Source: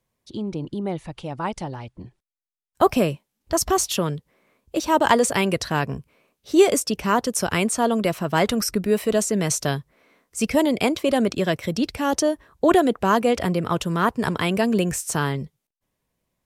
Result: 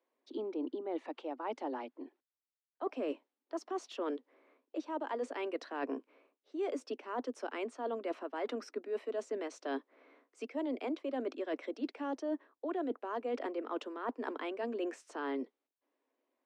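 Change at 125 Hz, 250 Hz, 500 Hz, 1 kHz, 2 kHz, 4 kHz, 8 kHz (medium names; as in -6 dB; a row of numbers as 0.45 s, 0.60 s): under -40 dB, -17.0 dB, -15.5 dB, -17.5 dB, -19.0 dB, -23.0 dB, -33.0 dB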